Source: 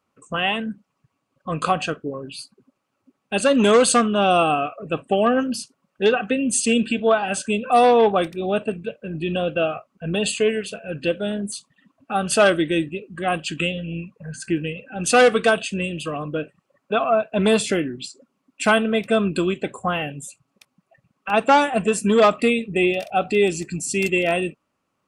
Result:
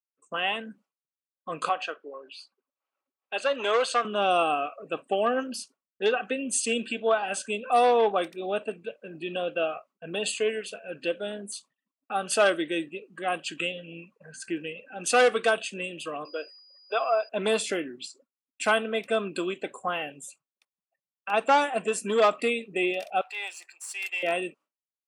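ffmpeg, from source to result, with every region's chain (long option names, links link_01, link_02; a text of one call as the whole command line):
ffmpeg -i in.wav -filter_complex "[0:a]asettb=1/sr,asplit=3[link_01][link_02][link_03];[link_01]atrim=end=1.694[link_04];[link_02]atrim=start=1.69:end=4.05,asetpts=PTS-STARTPTS,afade=type=in:duration=0.004:curve=qsin,afade=type=out:start_time=2.356:duration=0.004:curve=qsin,acompressor=mode=upward:threshold=-37dB:ratio=2.5:attack=3.2:release=140:knee=2.83:detection=peak,highpass=500,lowpass=4300[link_05];[link_03]atrim=start=4.046[link_06];[link_04][link_05]acrossfade=duration=0.004:curve1=hsin:curve2=qsin[link_07];[link_07][link_06]acrossfade=duration=0.004:curve1=qsin:curve2=hsin,asettb=1/sr,asplit=3[link_08][link_09][link_10];[link_08]atrim=end=16.254[link_11];[link_09]atrim=start=16.25:end=17.29,asetpts=PTS-STARTPTS,afade=type=in:duration=0.004:curve=qsin,afade=type=out:start_time=1.036:duration=0.004:curve=qsin,highpass=frequency=380:width=0.5412,highpass=frequency=380:width=1.3066,aeval=exprs='val(0)+0.00708*sin(2*PI*4900*n/s)':channel_layout=same[link_12];[link_10]atrim=start=17.286[link_13];[link_11][link_12]acrossfade=duration=0.004:curve1=hsin:curve2=qsin[link_14];[link_14][link_13]acrossfade=duration=0.004:curve1=qsin:curve2=hsin,asettb=1/sr,asplit=3[link_15][link_16][link_17];[link_15]atrim=end=23.214[link_18];[link_16]atrim=start=23.21:end=24.23,asetpts=PTS-STARTPTS,afade=type=in:duration=0.004:curve=qsin,afade=type=out:start_time=1.016:duration=0.004:curve=qsin,aeval=exprs='if(lt(val(0),0),0.708*val(0),val(0))':channel_layout=same,highpass=frequency=840:width=0.5412,highpass=frequency=840:width=1.3066,equalizer=frequency=6400:width=1.1:gain=-6[link_19];[link_17]atrim=start=24.226[link_20];[link_18][link_19]acrossfade=duration=0.004:curve1=hsin:curve2=qsin[link_21];[link_21][link_20]acrossfade=duration=0.004:curve1=qsin:curve2=hsin,agate=range=-33dB:threshold=-42dB:ratio=3:detection=peak,highpass=340,volume=-5.5dB" out.wav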